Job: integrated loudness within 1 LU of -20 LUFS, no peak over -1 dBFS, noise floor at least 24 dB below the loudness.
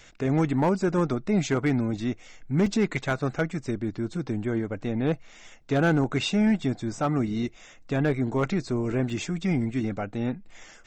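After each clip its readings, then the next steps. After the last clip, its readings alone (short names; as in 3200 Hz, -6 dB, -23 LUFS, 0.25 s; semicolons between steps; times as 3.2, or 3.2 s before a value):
clipped 0.4%; flat tops at -16.0 dBFS; dropouts 2; longest dropout 2.7 ms; loudness -27.0 LUFS; peak -16.0 dBFS; loudness target -20.0 LUFS
-> clip repair -16 dBFS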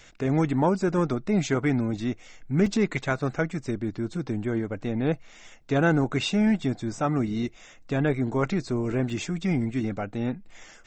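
clipped 0.0%; dropouts 2; longest dropout 2.7 ms
-> interpolate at 2.66/9.1, 2.7 ms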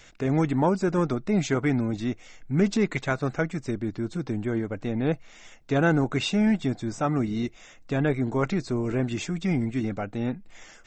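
dropouts 0; loudness -26.5 LUFS; peak -9.5 dBFS; loudness target -20.0 LUFS
-> gain +6.5 dB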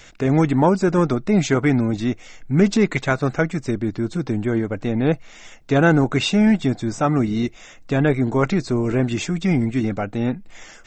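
loudness -20.0 LUFS; peak -3.0 dBFS; noise floor -44 dBFS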